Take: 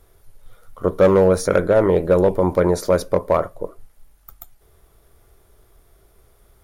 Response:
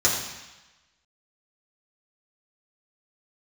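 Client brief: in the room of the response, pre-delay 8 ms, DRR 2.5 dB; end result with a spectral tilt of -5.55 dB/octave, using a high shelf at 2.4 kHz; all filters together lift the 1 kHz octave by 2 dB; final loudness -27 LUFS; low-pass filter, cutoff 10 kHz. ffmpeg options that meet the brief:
-filter_complex "[0:a]lowpass=10000,equalizer=f=1000:t=o:g=3.5,highshelf=f=2400:g=-6,asplit=2[s0][s1];[1:a]atrim=start_sample=2205,adelay=8[s2];[s1][s2]afir=irnorm=-1:irlink=0,volume=0.133[s3];[s0][s3]amix=inputs=2:normalize=0,volume=0.237"

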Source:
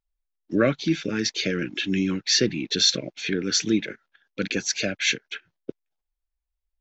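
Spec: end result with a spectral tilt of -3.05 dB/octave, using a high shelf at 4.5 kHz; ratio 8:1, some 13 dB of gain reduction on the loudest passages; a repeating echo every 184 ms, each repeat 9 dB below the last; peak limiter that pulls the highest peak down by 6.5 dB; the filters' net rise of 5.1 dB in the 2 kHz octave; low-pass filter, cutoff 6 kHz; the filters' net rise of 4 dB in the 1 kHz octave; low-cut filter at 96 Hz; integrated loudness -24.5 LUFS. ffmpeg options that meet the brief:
-af "highpass=96,lowpass=6000,equalizer=f=1000:t=o:g=3,equalizer=f=2000:t=o:g=4.5,highshelf=f=4500:g=6,acompressor=threshold=0.0447:ratio=8,alimiter=limit=0.0944:level=0:latency=1,aecho=1:1:184|368|552|736:0.355|0.124|0.0435|0.0152,volume=2.37"

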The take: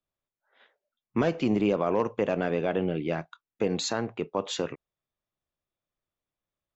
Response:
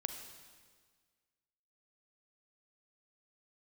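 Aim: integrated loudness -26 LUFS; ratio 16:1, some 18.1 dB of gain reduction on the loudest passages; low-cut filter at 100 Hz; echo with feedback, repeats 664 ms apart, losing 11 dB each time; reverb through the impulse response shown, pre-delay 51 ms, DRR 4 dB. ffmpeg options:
-filter_complex "[0:a]highpass=100,acompressor=threshold=0.0112:ratio=16,aecho=1:1:664|1328|1992:0.282|0.0789|0.0221,asplit=2[s0][s1];[1:a]atrim=start_sample=2205,adelay=51[s2];[s1][s2]afir=irnorm=-1:irlink=0,volume=0.631[s3];[s0][s3]amix=inputs=2:normalize=0,volume=7.5"

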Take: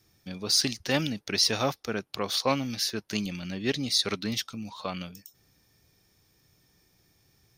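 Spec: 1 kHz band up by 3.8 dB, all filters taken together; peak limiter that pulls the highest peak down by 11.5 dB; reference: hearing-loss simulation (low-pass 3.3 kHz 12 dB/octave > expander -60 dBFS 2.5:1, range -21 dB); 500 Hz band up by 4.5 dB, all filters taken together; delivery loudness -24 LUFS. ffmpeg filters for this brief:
-af "equalizer=f=500:t=o:g=4.5,equalizer=f=1000:t=o:g=3.5,alimiter=limit=0.106:level=0:latency=1,lowpass=3300,agate=range=0.0891:threshold=0.001:ratio=2.5,volume=2.99"

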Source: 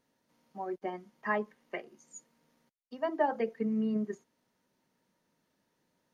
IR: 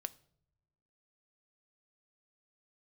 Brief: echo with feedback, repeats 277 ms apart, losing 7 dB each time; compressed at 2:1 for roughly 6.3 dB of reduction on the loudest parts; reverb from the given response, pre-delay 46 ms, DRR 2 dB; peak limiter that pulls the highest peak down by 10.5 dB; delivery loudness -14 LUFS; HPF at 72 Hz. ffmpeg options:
-filter_complex "[0:a]highpass=72,acompressor=threshold=0.02:ratio=2,alimiter=level_in=2.82:limit=0.0631:level=0:latency=1,volume=0.355,aecho=1:1:277|554|831|1108|1385:0.447|0.201|0.0905|0.0407|0.0183,asplit=2[s0][s1];[1:a]atrim=start_sample=2205,adelay=46[s2];[s1][s2]afir=irnorm=-1:irlink=0,volume=1.06[s3];[s0][s3]amix=inputs=2:normalize=0,volume=20"

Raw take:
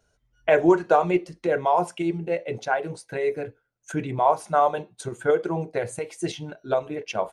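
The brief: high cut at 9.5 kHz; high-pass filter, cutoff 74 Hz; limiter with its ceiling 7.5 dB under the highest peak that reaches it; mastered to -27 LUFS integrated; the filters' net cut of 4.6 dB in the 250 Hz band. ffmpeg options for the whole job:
-af "highpass=74,lowpass=9500,equalizer=f=250:t=o:g=-8.5,volume=1.26,alimiter=limit=0.237:level=0:latency=1"

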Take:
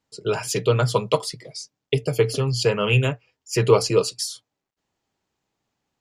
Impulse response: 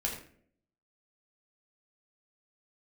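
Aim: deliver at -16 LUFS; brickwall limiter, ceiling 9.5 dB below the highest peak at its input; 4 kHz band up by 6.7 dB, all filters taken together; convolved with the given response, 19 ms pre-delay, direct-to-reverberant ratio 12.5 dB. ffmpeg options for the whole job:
-filter_complex "[0:a]equalizer=f=4000:t=o:g=9,alimiter=limit=0.237:level=0:latency=1,asplit=2[s0][s1];[1:a]atrim=start_sample=2205,adelay=19[s2];[s1][s2]afir=irnorm=-1:irlink=0,volume=0.15[s3];[s0][s3]amix=inputs=2:normalize=0,volume=2.37"

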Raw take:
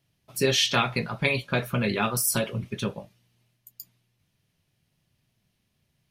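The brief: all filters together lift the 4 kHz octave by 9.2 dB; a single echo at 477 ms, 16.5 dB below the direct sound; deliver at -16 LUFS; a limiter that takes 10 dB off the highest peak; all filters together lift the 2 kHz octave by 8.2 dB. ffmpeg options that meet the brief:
-af "equalizer=f=2000:t=o:g=7.5,equalizer=f=4000:t=o:g=9,alimiter=limit=0.299:level=0:latency=1,aecho=1:1:477:0.15,volume=2.24"

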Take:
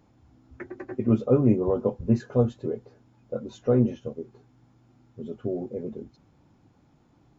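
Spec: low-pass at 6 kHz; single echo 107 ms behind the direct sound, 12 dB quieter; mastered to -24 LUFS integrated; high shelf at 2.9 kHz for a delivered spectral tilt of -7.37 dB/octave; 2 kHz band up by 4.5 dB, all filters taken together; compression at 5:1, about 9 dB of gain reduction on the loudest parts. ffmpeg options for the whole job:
-af "lowpass=6000,equalizer=f=2000:t=o:g=8.5,highshelf=f=2900:g=-8,acompressor=threshold=0.0562:ratio=5,aecho=1:1:107:0.251,volume=2.82"

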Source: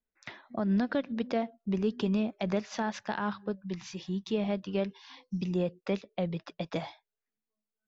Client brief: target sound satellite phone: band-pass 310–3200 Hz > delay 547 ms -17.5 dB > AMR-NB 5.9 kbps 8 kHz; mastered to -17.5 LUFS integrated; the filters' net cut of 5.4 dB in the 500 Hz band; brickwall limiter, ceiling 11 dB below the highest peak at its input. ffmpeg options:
-af "equalizer=f=500:t=o:g=-6,alimiter=level_in=2:limit=0.0631:level=0:latency=1,volume=0.501,highpass=310,lowpass=3200,aecho=1:1:547:0.133,volume=28.2" -ar 8000 -c:a libopencore_amrnb -b:a 5900

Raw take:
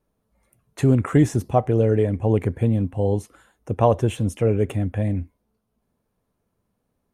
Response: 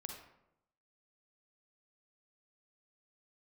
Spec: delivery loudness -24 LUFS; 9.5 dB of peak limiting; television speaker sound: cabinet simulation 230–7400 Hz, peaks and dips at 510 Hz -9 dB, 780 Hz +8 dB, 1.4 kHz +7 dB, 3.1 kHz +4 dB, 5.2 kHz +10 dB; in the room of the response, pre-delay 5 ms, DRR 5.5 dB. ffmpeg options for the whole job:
-filter_complex "[0:a]alimiter=limit=0.211:level=0:latency=1,asplit=2[s0][s1];[1:a]atrim=start_sample=2205,adelay=5[s2];[s1][s2]afir=irnorm=-1:irlink=0,volume=0.75[s3];[s0][s3]amix=inputs=2:normalize=0,highpass=f=230:w=0.5412,highpass=f=230:w=1.3066,equalizer=f=510:t=q:w=4:g=-9,equalizer=f=780:t=q:w=4:g=8,equalizer=f=1400:t=q:w=4:g=7,equalizer=f=3100:t=q:w=4:g=4,equalizer=f=5200:t=q:w=4:g=10,lowpass=f=7400:w=0.5412,lowpass=f=7400:w=1.3066,volume=1.5"

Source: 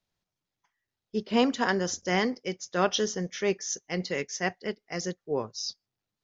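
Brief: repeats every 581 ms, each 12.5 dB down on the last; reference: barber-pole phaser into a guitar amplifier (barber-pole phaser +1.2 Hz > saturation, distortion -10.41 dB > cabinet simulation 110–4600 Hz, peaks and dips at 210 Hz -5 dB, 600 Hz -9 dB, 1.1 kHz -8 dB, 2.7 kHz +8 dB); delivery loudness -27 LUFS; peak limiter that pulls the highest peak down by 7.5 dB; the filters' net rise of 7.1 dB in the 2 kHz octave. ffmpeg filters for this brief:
-filter_complex "[0:a]equalizer=f=2000:t=o:g=7,alimiter=limit=0.158:level=0:latency=1,aecho=1:1:581|1162|1743:0.237|0.0569|0.0137,asplit=2[s0][s1];[s1]afreqshift=1.2[s2];[s0][s2]amix=inputs=2:normalize=1,asoftclip=threshold=0.0335,highpass=110,equalizer=f=210:t=q:w=4:g=-5,equalizer=f=600:t=q:w=4:g=-9,equalizer=f=1100:t=q:w=4:g=-8,equalizer=f=2700:t=q:w=4:g=8,lowpass=f=4600:w=0.5412,lowpass=f=4600:w=1.3066,volume=3.35"

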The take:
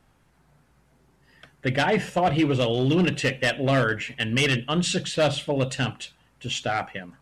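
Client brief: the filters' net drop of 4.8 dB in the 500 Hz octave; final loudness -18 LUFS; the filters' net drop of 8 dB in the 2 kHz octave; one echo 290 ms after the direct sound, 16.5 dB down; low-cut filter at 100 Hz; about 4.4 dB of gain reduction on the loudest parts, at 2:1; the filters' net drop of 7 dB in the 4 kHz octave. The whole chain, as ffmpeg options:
-af "highpass=100,equalizer=f=500:t=o:g=-5.5,equalizer=f=2000:t=o:g=-9,equalizer=f=4000:t=o:g=-5.5,acompressor=threshold=0.0447:ratio=2,aecho=1:1:290:0.15,volume=4.22"

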